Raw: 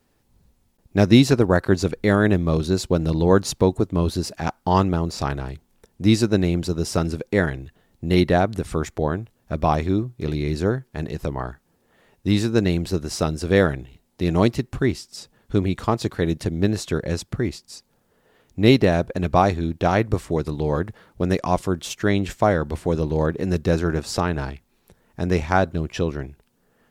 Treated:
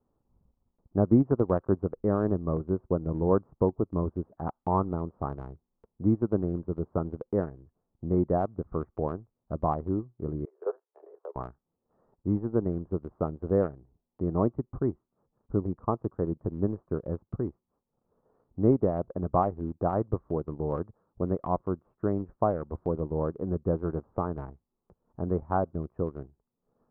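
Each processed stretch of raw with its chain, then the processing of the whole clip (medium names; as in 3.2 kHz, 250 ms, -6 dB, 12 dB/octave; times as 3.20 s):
10.45–11.36 s: steep high-pass 390 Hz 72 dB/octave + level held to a coarse grid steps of 11 dB + doubling 12 ms -5 dB
whole clip: elliptic low-pass 1.2 kHz, stop band 70 dB; transient shaper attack +2 dB, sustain -10 dB; trim -8 dB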